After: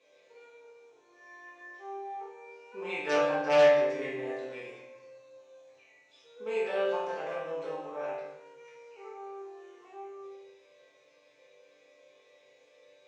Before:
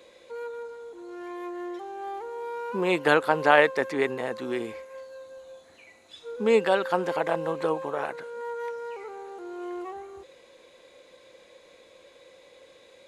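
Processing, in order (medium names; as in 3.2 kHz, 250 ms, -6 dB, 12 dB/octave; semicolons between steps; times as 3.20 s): chord resonator G2 sus4, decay 0.53 s; wavefolder -23 dBFS; cabinet simulation 130–7900 Hz, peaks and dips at 210 Hz -8 dB, 510 Hz +3 dB, 780 Hz +3 dB, 2.4 kHz +8 dB, 5.8 kHz +8 dB; reverberation RT60 0.85 s, pre-delay 5 ms, DRR -2.5 dB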